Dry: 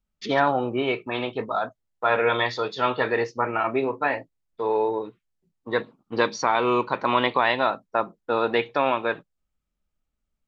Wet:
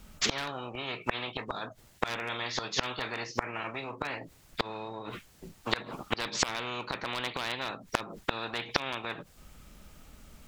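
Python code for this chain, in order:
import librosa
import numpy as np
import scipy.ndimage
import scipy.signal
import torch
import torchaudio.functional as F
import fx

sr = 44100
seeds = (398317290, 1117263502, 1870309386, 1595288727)

y = fx.clip_asym(x, sr, top_db=-13.0, bottom_db=-10.0)
y = fx.gate_flip(y, sr, shuts_db=-20.0, range_db=-30)
y = fx.spectral_comp(y, sr, ratio=4.0)
y = F.gain(torch.from_numpy(y), 9.0).numpy()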